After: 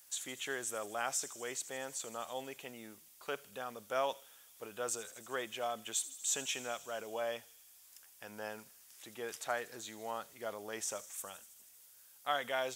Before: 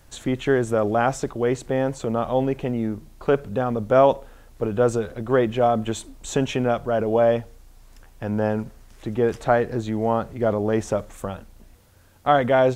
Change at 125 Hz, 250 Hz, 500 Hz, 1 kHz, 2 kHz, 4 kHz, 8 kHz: −33.5, −27.0, −21.0, −16.5, −11.0, −5.0, +1.5 decibels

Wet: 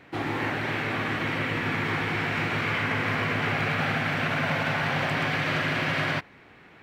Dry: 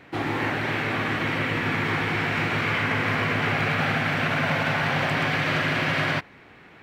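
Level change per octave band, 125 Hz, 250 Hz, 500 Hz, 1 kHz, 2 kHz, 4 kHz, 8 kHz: −2.5, −2.5, −2.5, −2.5, −2.5, −2.5, −2.5 decibels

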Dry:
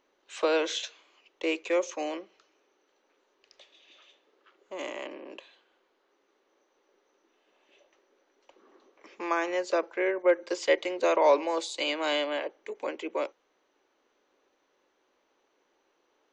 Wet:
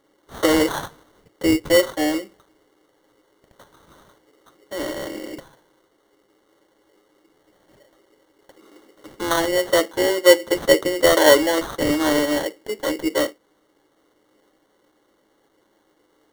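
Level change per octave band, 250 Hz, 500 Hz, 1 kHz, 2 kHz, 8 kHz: +14.0, +9.0, +6.0, +9.5, +15.0 decibels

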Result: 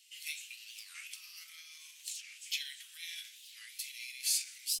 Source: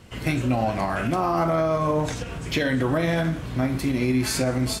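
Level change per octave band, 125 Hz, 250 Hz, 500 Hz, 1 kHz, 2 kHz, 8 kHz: below −40 dB, below −40 dB, below −40 dB, below −40 dB, −15.5 dB, −2.0 dB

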